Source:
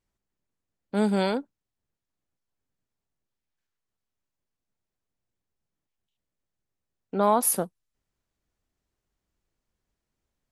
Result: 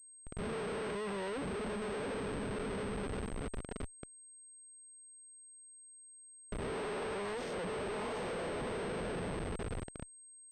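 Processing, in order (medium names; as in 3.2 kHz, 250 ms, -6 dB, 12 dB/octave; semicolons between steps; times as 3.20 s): reverse spectral sustain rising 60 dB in 1.02 s; treble shelf 2.1 kHz -6 dB; reverse; compression 16:1, threshold -30 dBFS, peak gain reduction 15.5 dB; reverse; small resonant body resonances 440/1600 Hz, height 13 dB, ringing for 45 ms; on a send: echo that smears into a reverb 750 ms, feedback 49%, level -11 dB; on the sum: valve stage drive 40 dB, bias 0.6; Schmitt trigger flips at -53 dBFS; class-D stage that switches slowly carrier 8.4 kHz; trim +10 dB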